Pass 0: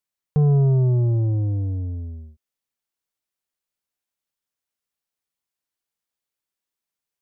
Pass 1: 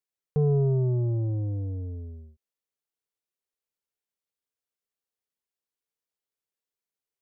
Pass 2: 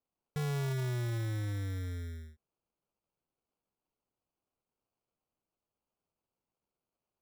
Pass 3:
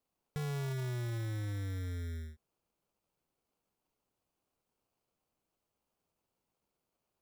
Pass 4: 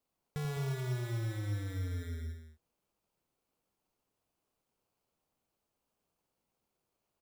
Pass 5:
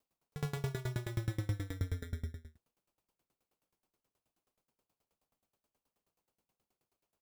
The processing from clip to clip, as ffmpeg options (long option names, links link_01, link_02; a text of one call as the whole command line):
ffmpeg -i in.wav -af "equalizer=frequency=440:width_type=o:width=0.48:gain=8.5,volume=-7dB" out.wav
ffmpeg -i in.wav -filter_complex "[0:a]asplit=2[link_01][link_02];[link_02]acompressor=threshold=-36dB:ratio=6,volume=-2dB[link_03];[link_01][link_03]amix=inputs=2:normalize=0,acrusher=samples=24:mix=1:aa=0.000001,asoftclip=type=tanh:threshold=-26dB,volume=-6dB" out.wav
ffmpeg -i in.wav -filter_complex "[0:a]asplit=2[link_01][link_02];[link_02]alimiter=level_in=16.5dB:limit=-24dB:level=0:latency=1,volume=-16.5dB,volume=-2.5dB[link_03];[link_01][link_03]amix=inputs=2:normalize=0,acompressor=threshold=-39dB:ratio=2.5" out.wav
ffmpeg -i in.wav -af "aecho=1:1:87.46|209.9:0.355|0.355" out.wav
ffmpeg -i in.wav -af "aeval=exprs='val(0)*pow(10,-25*if(lt(mod(9.4*n/s,1),2*abs(9.4)/1000),1-mod(9.4*n/s,1)/(2*abs(9.4)/1000),(mod(9.4*n/s,1)-2*abs(9.4)/1000)/(1-2*abs(9.4)/1000))/20)':channel_layout=same,volume=6.5dB" out.wav